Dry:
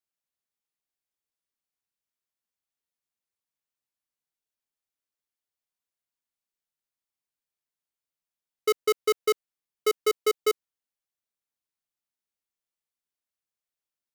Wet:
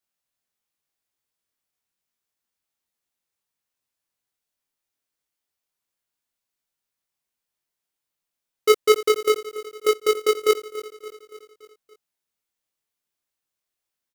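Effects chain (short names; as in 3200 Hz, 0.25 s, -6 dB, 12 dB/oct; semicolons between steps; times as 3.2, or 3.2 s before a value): 9.08–10.5 compressor, threshold -25 dBFS, peak gain reduction 4.5 dB; doubler 21 ms -2.5 dB; on a send: feedback echo 0.285 s, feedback 56%, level -15 dB; on the sum: gain +4.5 dB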